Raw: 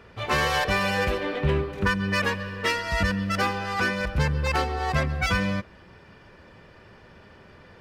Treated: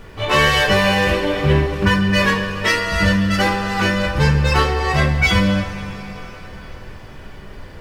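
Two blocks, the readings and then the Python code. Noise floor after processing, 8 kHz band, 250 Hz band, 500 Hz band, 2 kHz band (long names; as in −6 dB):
−37 dBFS, +8.0 dB, +10.5 dB, +8.5 dB, +8.0 dB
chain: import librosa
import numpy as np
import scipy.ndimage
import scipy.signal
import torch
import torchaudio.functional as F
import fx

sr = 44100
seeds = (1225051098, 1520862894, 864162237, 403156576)

y = fx.rev_double_slope(x, sr, seeds[0], early_s=0.28, late_s=4.7, knee_db=-21, drr_db=-4.0)
y = fx.dmg_noise_colour(y, sr, seeds[1], colour='brown', level_db=-39.0)
y = y * 10.0 ** (3.0 / 20.0)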